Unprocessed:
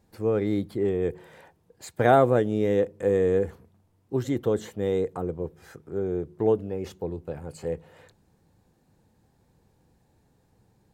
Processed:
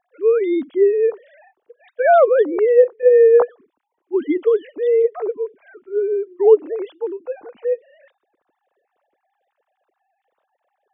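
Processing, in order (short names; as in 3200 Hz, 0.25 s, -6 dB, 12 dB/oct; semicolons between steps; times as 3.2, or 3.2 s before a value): sine-wave speech; gain +9 dB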